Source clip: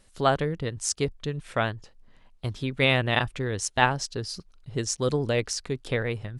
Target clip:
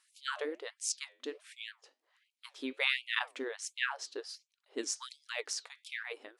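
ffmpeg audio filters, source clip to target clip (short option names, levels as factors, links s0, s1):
-filter_complex "[0:a]asettb=1/sr,asplit=3[s0][s1][s2];[s0]atrim=end=3.434[s3];[s1]atrim=start=3.43:end=4.77,asetpts=PTS-STARTPTS,afade=t=in:d=0.004:c=qsin,afade=t=out:st=1.336:d=0.004:c=qsin,bass=f=250:g=-3,treble=f=4000:g=-5[s4];[s2]atrim=start=4.766[s5];[s3][s4]acrossfade=d=0.004:c1=hsin:c2=qsin[s6];[s6][s5]acrossfade=d=0.004:c1=qsin:c2=hsin,flanger=delay=3.6:depth=7.1:regen=-80:speed=1.3:shape=sinusoidal,afftfilt=real='re*gte(b*sr/1024,230*pow(2200/230,0.5+0.5*sin(2*PI*1.4*pts/sr)))':imag='im*gte(b*sr/1024,230*pow(2200/230,0.5+0.5*sin(2*PI*1.4*pts/sr)))':win_size=1024:overlap=0.75,volume=0.794"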